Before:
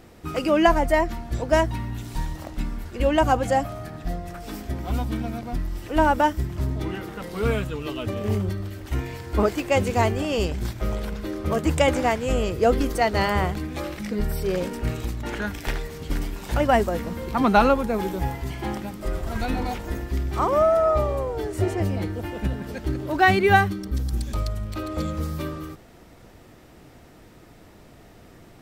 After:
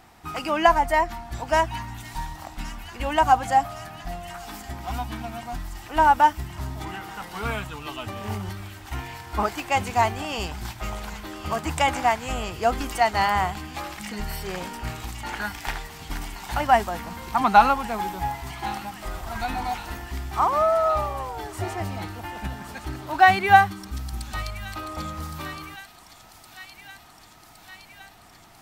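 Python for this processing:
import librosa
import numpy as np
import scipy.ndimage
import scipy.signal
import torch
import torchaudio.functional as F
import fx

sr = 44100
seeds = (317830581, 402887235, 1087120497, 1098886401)

y = fx.low_shelf_res(x, sr, hz=640.0, db=-6.5, q=3.0)
y = fx.echo_wet_highpass(y, sr, ms=1115, feedback_pct=74, hz=3200.0, wet_db=-8.5)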